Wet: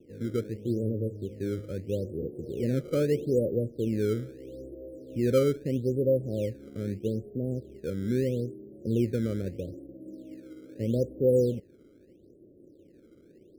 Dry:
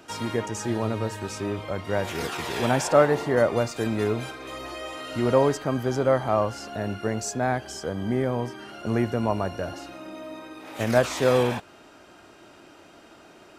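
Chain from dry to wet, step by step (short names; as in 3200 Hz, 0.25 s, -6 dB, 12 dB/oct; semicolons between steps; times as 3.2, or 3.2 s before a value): Chebyshev low-pass 530 Hz, order 6; in parallel at -8.5 dB: decimation with a swept rate 14×, swing 160% 0.78 Hz; on the sum: gain -4 dB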